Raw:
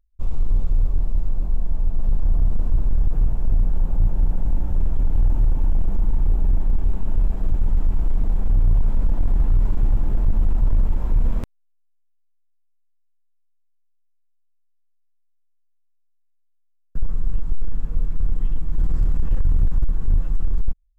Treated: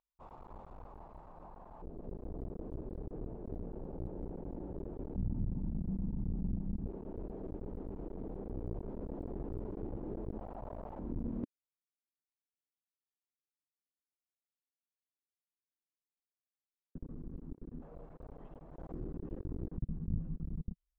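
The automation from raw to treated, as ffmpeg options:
-af "asetnsamples=n=441:p=0,asendcmd='1.82 bandpass f 400;5.16 bandpass f 190;6.86 bandpass f 400;10.38 bandpass f 680;10.99 bandpass f 280;17.82 bandpass f 630;18.92 bandpass f 350;19.78 bandpass f 180',bandpass=f=920:t=q:w=2.2:csg=0"

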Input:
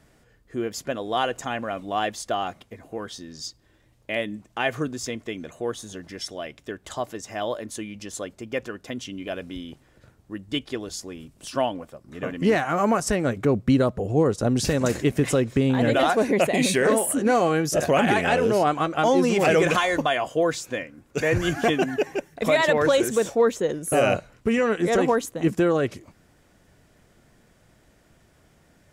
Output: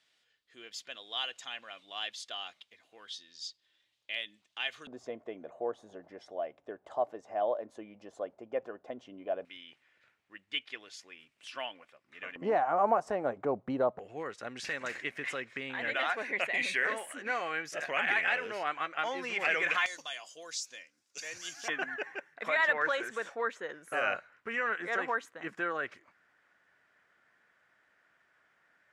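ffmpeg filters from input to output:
-af "asetnsamples=n=441:p=0,asendcmd='4.87 bandpass f 680;9.45 bandpass f 2300;12.36 bandpass f 780;13.99 bandpass f 2000;19.86 bandpass f 5500;21.68 bandpass f 1600',bandpass=f=3500:t=q:w=2.3:csg=0"

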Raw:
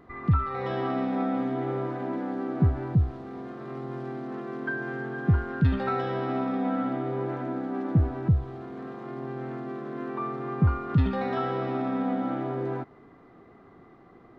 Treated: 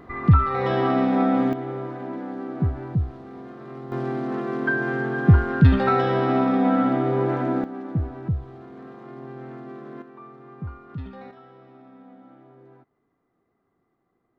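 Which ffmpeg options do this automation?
-af "asetnsamples=n=441:p=0,asendcmd='1.53 volume volume -1dB;3.92 volume volume 8dB;7.64 volume volume -3dB;10.02 volume volume -12dB;11.31 volume volume -20dB',volume=2.37"

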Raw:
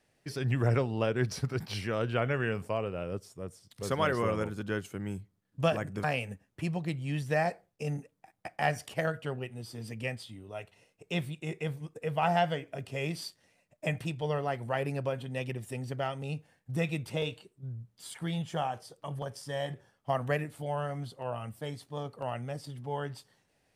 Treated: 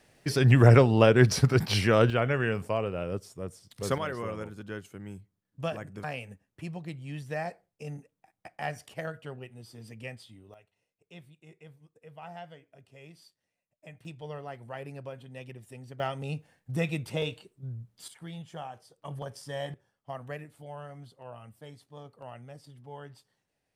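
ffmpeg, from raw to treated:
-af "asetnsamples=n=441:p=0,asendcmd='2.1 volume volume 3dB;3.98 volume volume -5.5dB;10.54 volume volume -17dB;14.05 volume volume -8.5dB;16 volume volume 1.5dB;18.08 volume volume -8dB;19.05 volume volume -1dB;19.74 volume volume -9dB',volume=3.16"

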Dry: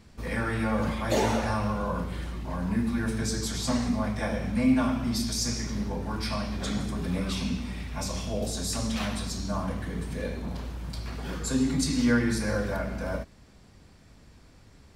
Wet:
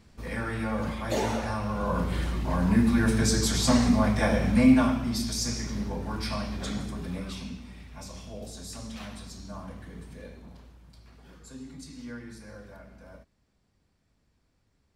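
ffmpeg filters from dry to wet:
-af "volume=1.88,afade=t=in:st=1.67:d=0.5:silence=0.375837,afade=t=out:st=4.57:d=0.48:silence=0.473151,afade=t=out:st=6.43:d=1.17:silence=0.354813,afade=t=out:st=9.99:d=0.86:silence=0.421697"

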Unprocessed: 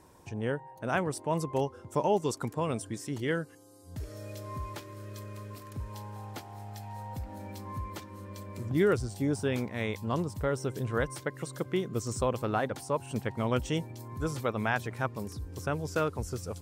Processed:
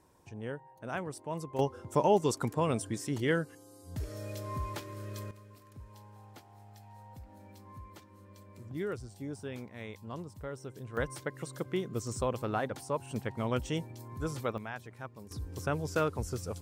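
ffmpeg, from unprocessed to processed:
-af "asetnsamples=n=441:p=0,asendcmd='1.59 volume volume 1.5dB;5.31 volume volume -11dB;10.97 volume volume -3dB;14.58 volume volume -12dB;15.31 volume volume -0.5dB',volume=0.422"

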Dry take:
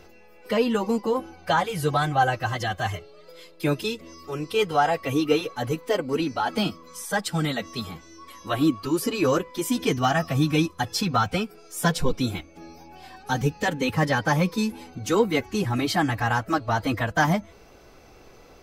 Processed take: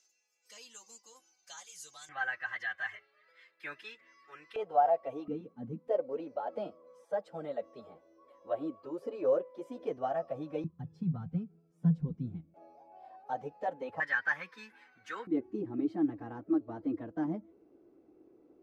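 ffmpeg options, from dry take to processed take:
-af "asetnsamples=n=441:p=0,asendcmd='2.09 bandpass f 1800;4.56 bandpass f 660;5.28 bandpass f 210;5.88 bandpass f 570;10.64 bandpass f 160;12.54 bandpass f 660;14 bandpass f 1700;15.27 bandpass f 320',bandpass=f=6700:t=q:w=5.6:csg=0"

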